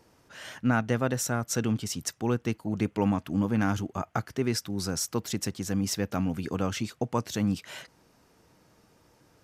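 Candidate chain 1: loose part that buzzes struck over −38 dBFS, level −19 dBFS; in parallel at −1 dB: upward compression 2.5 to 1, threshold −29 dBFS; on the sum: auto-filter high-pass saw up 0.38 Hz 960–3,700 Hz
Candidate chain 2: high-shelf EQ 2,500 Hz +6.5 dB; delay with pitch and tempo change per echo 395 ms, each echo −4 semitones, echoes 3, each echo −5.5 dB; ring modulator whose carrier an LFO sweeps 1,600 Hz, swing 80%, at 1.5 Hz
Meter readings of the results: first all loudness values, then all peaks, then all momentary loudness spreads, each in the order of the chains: −22.5, −29.0 LKFS; −5.0, −10.0 dBFS; 7, 8 LU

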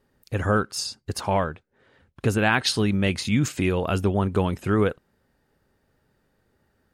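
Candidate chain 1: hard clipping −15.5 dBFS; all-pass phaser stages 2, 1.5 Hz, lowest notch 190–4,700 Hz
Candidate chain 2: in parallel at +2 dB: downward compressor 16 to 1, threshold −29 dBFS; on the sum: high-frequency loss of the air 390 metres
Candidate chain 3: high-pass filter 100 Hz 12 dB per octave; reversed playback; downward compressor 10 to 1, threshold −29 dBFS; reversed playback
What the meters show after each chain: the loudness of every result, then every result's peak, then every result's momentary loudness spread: −26.0, −23.0, −34.5 LKFS; −10.5, −7.0, −17.5 dBFS; 12, 10, 7 LU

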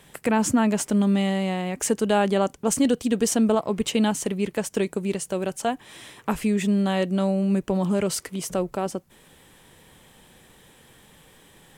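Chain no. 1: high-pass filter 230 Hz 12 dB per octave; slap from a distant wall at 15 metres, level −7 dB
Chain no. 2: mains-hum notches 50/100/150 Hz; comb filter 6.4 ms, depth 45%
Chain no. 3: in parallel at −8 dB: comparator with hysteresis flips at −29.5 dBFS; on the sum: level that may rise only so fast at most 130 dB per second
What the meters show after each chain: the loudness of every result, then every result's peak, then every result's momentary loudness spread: −25.0, −24.0, −24.5 LKFS; −6.5, −9.5, −10.5 dBFS; 7, 8, 16 LU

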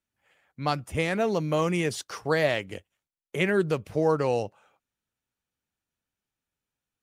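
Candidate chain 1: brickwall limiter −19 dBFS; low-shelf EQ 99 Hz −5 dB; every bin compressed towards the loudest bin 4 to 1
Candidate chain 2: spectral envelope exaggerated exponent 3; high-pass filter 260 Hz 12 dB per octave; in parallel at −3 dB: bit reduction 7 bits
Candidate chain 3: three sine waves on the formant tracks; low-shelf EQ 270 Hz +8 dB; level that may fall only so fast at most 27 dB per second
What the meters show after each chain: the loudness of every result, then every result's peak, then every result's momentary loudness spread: −36.0, −23.0, −22.0 LKFS; −18.5, −9.5, −6.0 dBFS; 14, 10, 15 LU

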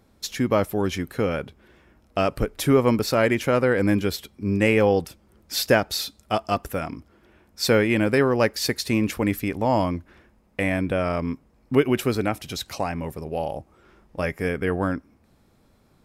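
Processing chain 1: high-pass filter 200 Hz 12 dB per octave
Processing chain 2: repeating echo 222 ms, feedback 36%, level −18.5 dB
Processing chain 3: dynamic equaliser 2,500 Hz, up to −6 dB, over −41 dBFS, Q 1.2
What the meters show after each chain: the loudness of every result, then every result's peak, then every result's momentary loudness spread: −24.5, −23.5, −24.0 LKFS; −3.5, −5.5, −6.0 dBFS; 12, 12, 12 LU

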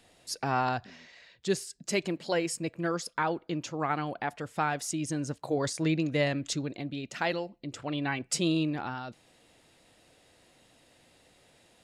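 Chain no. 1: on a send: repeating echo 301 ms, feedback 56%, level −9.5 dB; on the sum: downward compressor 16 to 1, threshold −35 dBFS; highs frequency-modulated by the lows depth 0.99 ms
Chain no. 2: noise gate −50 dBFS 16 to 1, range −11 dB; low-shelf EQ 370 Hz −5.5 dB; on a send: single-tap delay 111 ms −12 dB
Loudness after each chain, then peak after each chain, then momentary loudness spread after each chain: −40.5, −33.0 LKFS; −21.5, −16.5 dBFS; 13, 9 LU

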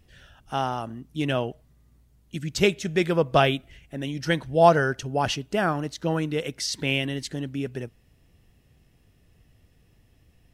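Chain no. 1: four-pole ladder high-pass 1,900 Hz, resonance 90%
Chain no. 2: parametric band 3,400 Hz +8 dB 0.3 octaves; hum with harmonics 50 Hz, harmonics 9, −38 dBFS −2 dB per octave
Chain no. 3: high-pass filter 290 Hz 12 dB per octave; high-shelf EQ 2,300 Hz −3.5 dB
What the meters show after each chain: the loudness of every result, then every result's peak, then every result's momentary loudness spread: −35.0, −24.5, −27.0 LKFS; −13.5, −3.5, −5.0 dBFS; 17, 20, 16 LU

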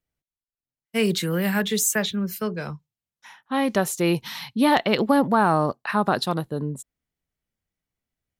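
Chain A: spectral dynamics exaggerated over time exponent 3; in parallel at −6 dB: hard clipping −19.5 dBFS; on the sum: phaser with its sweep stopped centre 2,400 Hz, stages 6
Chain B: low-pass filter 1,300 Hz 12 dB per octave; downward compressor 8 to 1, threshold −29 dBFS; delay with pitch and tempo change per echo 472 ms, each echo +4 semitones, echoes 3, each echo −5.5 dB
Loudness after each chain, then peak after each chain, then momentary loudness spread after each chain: −28.5, −33.5 LKFS; −12.5, −19.0 dBFS; 12, 7 LU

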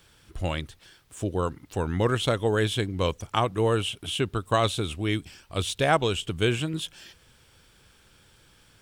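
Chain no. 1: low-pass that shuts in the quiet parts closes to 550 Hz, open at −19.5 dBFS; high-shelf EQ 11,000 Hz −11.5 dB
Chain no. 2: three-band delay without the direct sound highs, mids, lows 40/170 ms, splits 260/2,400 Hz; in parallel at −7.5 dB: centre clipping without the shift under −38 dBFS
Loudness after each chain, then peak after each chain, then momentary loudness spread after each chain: −27.5, −25.0 LKFS; −8.5, −5.5 dBFS; 9, 10 LU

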